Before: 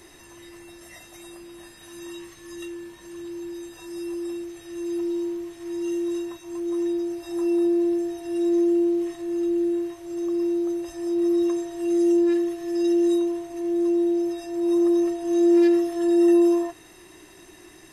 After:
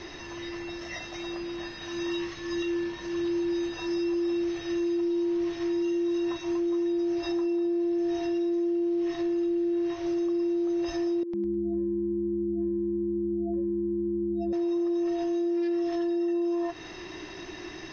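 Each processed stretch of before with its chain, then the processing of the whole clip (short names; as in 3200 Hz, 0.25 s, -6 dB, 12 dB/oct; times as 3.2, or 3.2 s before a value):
11.23–14.53 spectral contrast raised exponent 2.8 + compressor 12:1, threshold -34 dBFS + frequency-shifting echo 0.104 s, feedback 30%, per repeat -140 Hz, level -8 dB
whole clip: elliptic low-pass 5700 Hz, stop band 40 dB; compressor 6:1, threshold -32 dBFS; limiter -32 dBFS; gain +9 dB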